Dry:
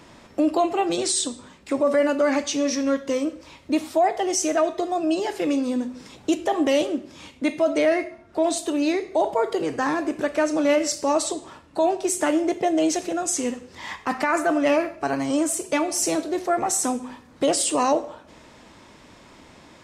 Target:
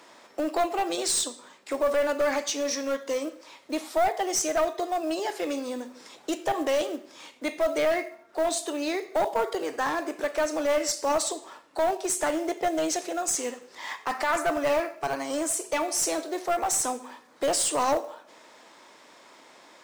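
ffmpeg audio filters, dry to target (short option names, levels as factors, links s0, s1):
-af "highpass=460,equalizer=f=2700:t=o:w=0.38:g=-3,acrusher=bits=6:mode=log:mix=0:aa=0.000001,acontrast=24,aeval=exprs='clip(val(0),-1,0.15)':c=same,volume=0.501"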